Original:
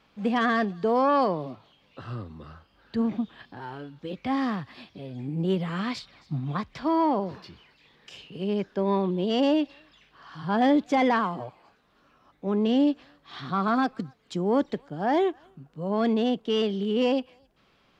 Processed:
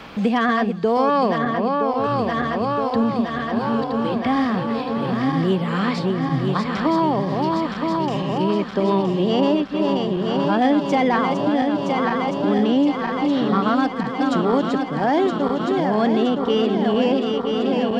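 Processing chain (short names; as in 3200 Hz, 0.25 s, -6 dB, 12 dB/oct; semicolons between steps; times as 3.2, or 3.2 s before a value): regenerating reverse delay 0.484 s, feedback 81%, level -6 dB; 1.38–2.04 high shelf 3400 Hz -11 dB; three-band squash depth 70%; gain +4.5 dB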